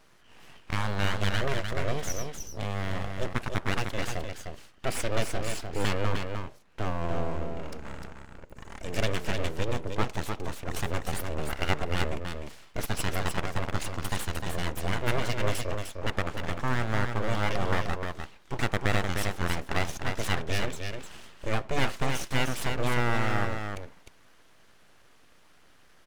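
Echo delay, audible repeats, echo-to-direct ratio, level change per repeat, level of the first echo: 304 ms, 1, -5.5 dB, no regular repeats, -5.5 dB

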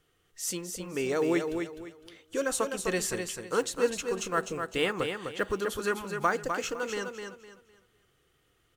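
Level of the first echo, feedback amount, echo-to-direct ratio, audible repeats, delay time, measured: -6.0 dB, 28%, -5.5 dB, 3, 254 ms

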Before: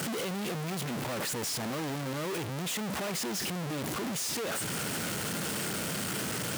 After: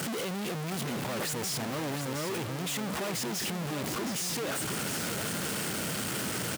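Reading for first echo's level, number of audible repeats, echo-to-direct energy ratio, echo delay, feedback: -8.0 dB, 1, -8.0 dB, 716 ms, no regular repeats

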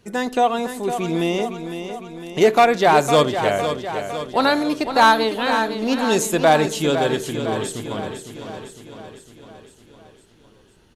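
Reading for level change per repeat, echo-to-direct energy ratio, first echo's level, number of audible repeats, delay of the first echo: -4.5 dB, -7.0 dB, -9.0 dB, 6, 506 ms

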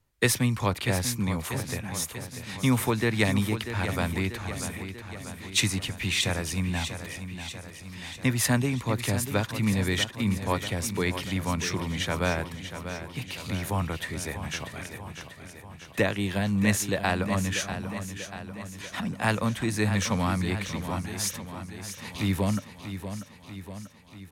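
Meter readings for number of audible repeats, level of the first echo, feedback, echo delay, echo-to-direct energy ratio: 6, -10.0 dB, 60%, 640 ms, -8.0 dB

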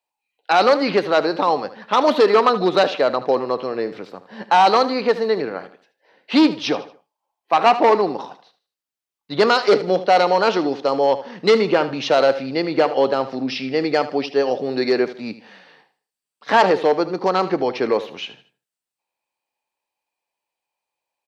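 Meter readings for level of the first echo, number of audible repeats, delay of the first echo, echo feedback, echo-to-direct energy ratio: -14.5 dB, 3, 77 ms, 34%, -14.0 dB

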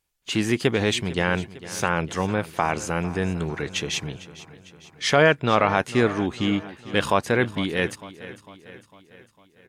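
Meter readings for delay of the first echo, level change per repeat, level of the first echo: 452 ms, -5.5 dB, -16.5 dB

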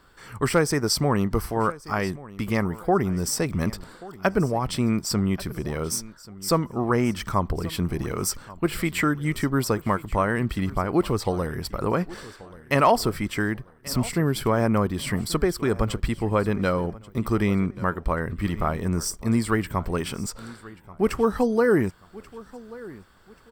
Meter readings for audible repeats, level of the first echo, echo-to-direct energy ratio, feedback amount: 2, -19.5 dB, -19.0 dB, 32%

